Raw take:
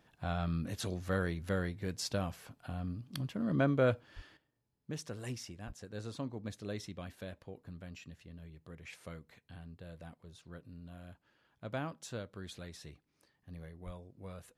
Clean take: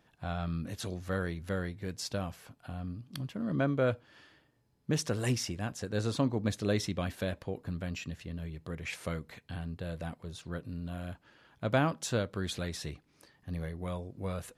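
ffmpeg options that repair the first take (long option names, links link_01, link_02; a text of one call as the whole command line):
ffmpeg -i in.wav -filter_complex "[0:a]asplit=3[link_01][link_02][link_03];[link_01]afade=type=out:start_time=4.15:duration=0.02[link_04];[link_02]highpass=frequency=140:width=0.5412,highpass=frequency=140:width=1.3066,afade=type=in:start_time=4.15:duration=0.02,afade=type=out:start_time=4.27:duration=0.02[link_05];[link_03]afade=type=in:start_time=4.27:duration=0.02[link_06];[link_04][link_05][link_06]amix=inputs=3:normalize=0,asplit=3[link_07][link_08][link_09];[link_07]afade=type=out:start_time=5.66:duration=0.02[link_10];[link_08]highpass=frequency=140:width=0.5412,highpass=frequency=140:width=1.3066,afade=type=in:start_time=5.66:duration=0.02,afade=type=out:start_time=5.78:duration=0.02[link_11];[link_09]afade=type=in:start_time=5.78:duration=0.02[link_12];[link_10][link_11][link_12]amix=inputs=3:normalize=0,asplit=3[link_13][link_14][link_15];[link_13]afade=type=out:start_time=13.85:duration=0.02[link_16];[link_14]highpass=frequency=140:width=0.5412,highpass=frequency=140:width=1.3066,afade=type=in:start_time=13.85:duration=0.02,afade=type=out:start_time=13.97:duration=0.02[link_17];[link_15]afade=type=in:start_time=13.97:duration=0.02[link_18];[link_16][link_17][link_18]amix=inputs=3:normalize=0,asetnsamples=nb_out_samples=441:pad=0,asendcmd='4.37 volume volume 11dB',volume=0dB" out.wav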